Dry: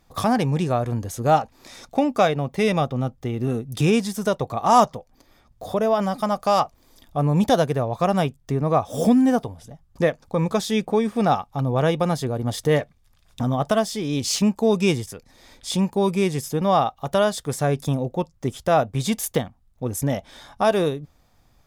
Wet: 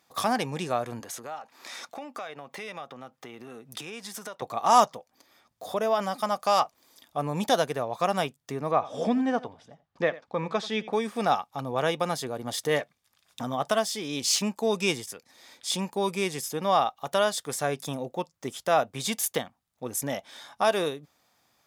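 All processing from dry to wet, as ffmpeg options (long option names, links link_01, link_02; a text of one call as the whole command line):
ffmpeg -i in.wav -filter_complex "[0:a]asettb=1/sr,asplit=3[link_01][link_02][link_03];[link_01]atrim=end=1.004[link_04];[link_02]atrim=start=1:end=4.42,asetpts=PTS-STARTPTS,afade=type=in:duration=0.004:curve=qsin,afade=type=out:start_time=3.416:duration=0.004:curve=qsin,highpass=130,equalizer=frequency=1400:width=0.5:gain=7,acompressor=threshold=-32dB:ratio=5:attack=3.2:release=140:knee=1:detection=peak[link_05];[link_03]atrim=start=4.416[link_06];[link_04][link_05]acrossfade=duration=0.004:curve1=hsin:curve2=qsin[link_07];[link_07][link_06]acrossfade=duration=0.004:curve1=qsin:curve2=hsin,asettb=1/sr,asplit=3[link_08][link_09][link_10];[link_08]atrim=end=8.714[link_11];[link_09]atrim=start=8.71:end=10.93,asetpts=PTS-STARTPTS,afade=type=in:duration=0.004:curve=qsin,afade=type=out:start_time=2.216:duration=0.004:curve=qsin,lowpass=3400,aecho=1:1:87:0.119,atrim=end_sample=97902[link_12];[link_10]atrim=start=10.926[link_13];[link_11][link_12]acrossfade=duration=0.004:curve1=hsin:curve2=qsin[link_14];[link_14][link_13]acrossfade=duration=0.004:curve1=qsin:curve2=hsin,highpass=260,equalizer=frequency=340:width=0.45:gain=-6.5" out.wav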